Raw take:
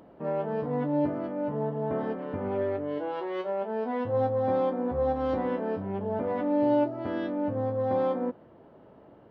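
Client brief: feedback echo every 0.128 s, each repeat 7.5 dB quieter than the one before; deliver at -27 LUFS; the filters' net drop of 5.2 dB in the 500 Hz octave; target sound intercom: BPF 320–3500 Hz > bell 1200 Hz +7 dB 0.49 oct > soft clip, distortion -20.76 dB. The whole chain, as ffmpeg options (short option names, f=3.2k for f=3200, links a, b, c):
-af "highpass=320,lowpass=3.5k,equalizer=f=500:t=o:g=-5.5,equalizer=f=1.2k:t=o:w=0.49:g=7,aecho=1:1:128|256|384|512|640:0.422|0.177|0.0744|0.0312|0.0131,asoftclip=threshold=-22.5dB,volume=6.5dB"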